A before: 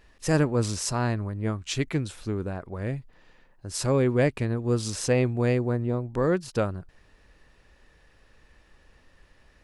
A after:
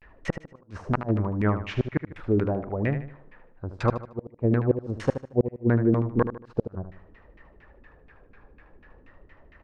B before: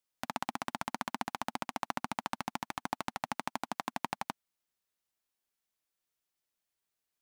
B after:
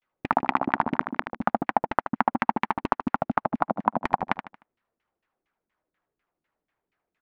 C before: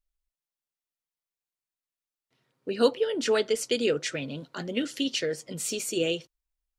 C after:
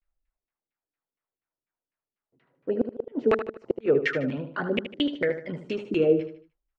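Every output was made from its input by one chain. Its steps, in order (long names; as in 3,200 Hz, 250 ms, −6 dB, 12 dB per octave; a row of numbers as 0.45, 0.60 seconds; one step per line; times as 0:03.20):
auto-filter low-pass saw down 4.2 Hz 240–2,400 Hz
pitch vibrato 0.45 Hz 88 cents
gate with flip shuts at −14 dBFS, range −41 dB
on a send: repeating echo 76 ms, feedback 37%, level −10 dB
on the sum: loudness normalisation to −27 LKFS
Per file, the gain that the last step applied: +3.5, +11.0, +3.0 decibels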